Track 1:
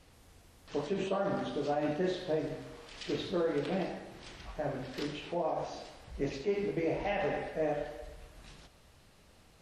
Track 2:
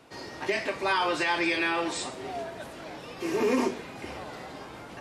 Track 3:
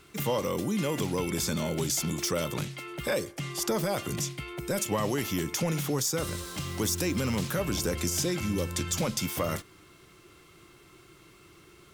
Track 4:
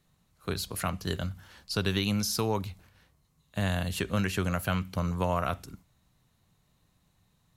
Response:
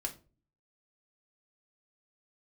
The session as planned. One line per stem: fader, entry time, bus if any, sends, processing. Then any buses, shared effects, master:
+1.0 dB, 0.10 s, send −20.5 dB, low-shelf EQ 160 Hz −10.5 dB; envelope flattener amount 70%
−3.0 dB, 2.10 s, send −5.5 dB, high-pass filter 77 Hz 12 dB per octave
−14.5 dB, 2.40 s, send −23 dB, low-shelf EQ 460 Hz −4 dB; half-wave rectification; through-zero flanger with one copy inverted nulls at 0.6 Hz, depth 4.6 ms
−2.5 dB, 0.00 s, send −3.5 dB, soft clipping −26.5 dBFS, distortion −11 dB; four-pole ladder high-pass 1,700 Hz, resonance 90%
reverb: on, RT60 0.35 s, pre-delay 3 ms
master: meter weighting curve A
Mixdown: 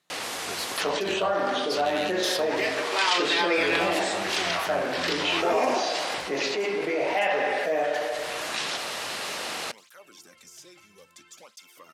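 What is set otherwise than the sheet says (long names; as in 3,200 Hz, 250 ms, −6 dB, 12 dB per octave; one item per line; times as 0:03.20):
stem 1 +1.0 dB → +7.0 dB
stem 3: missing half-wave rectification
stem 4: missing four-pole ladder high-pass 1,700 Hz, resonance 90%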